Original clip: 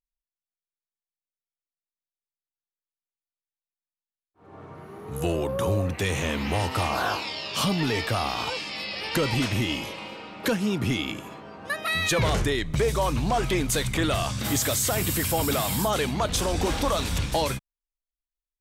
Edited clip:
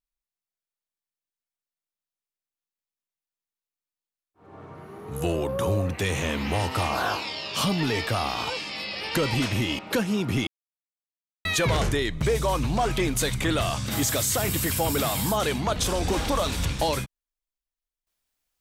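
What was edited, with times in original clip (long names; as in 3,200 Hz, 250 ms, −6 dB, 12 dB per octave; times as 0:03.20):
0:09.79–0:10.32: remove
0:11.00–0:11.98: silence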